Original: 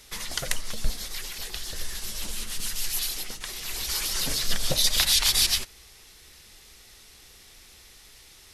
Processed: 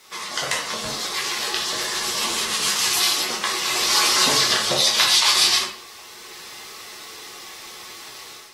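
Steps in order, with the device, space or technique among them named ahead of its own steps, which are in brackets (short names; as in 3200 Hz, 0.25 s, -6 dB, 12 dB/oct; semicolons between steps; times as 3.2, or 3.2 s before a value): filmed off a television (BPF 250–7900 Hz; bell 1100 Hz +10 dB 0.32 oct; reverb RT60 0.50 s, pre-delay 8 ms, DRR -2.5 dB; white noise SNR 28 dB; AGC gain up to 9.5 dB; gain -1 dB; AAC 48 kbps 48000 Hz)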